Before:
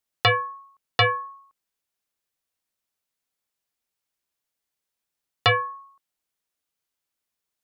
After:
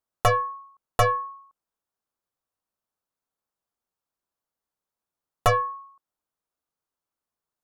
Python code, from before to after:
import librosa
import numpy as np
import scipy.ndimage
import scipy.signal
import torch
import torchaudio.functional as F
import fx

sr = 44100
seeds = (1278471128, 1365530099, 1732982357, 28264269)

y = fx.tracing_dist(x, sr, depth_ms=0.12)
y = fx.high_shelf_res(y, sr, hz=1600.0, db=-8.0, q=1.5)